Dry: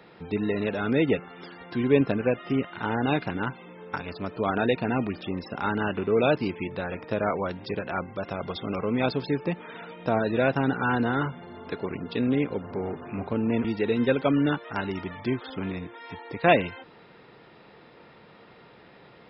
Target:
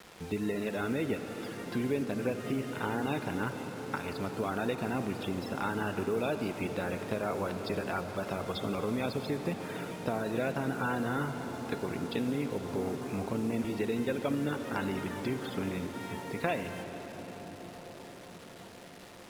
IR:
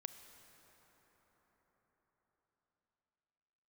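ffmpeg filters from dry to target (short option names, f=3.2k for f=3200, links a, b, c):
-filter_complex "[0:a]acompressor=threshold=-28dB:ratio=4,acrusher=bits=7:mix=0:aa=0.000001[a];[1:a]atrim=start_sample=2205,asetrate=24255,aresample=44100[b];[a][b]afir=irnorm=-1:irlink=0"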